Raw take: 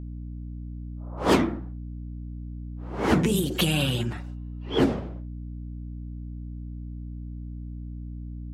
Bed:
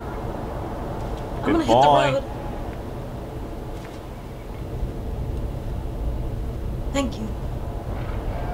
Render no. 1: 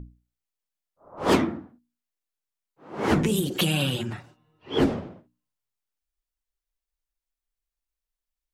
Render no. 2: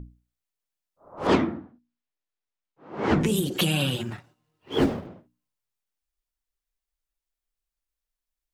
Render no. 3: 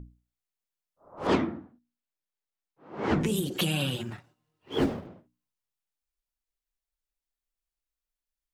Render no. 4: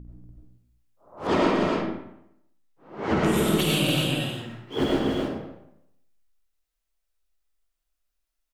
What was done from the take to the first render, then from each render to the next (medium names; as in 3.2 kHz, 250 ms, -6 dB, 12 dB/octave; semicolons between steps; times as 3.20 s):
hum notches 60/120/180/240/300 Hz
1.27–3.21 s: distance through air 110 m; 3.95–5.07 s: companding laws mixed up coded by A
trim -4 dB
on a send: loudspeakers at several distances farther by 17 m -7 dB, 82 m -7 dB, 100 m -5 dB; on the sum: algorithmic reverb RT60 0.78 s, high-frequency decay 0.75×, pre-delay 55 ms, DRR -3 dB